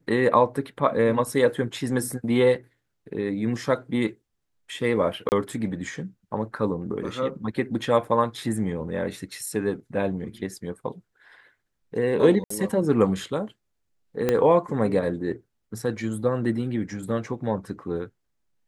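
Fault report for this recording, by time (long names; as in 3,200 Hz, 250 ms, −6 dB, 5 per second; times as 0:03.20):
0:05.29–0:05.32: drop-out 29 ms
0:08.04: drop-out 3.8 ms
0:12.44–0:12.50: drop-out 64 ms
0:14.29: click −9 dBFS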